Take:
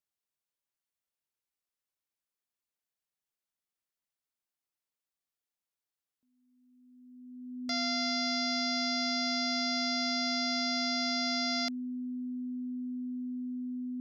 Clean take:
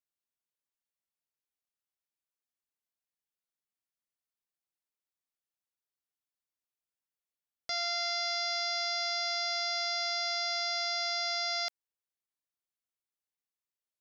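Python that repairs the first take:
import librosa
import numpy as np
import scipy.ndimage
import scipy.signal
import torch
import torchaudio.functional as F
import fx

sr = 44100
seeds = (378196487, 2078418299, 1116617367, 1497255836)

y = fx.notch(x, sr, hz=250.0, q=30.0)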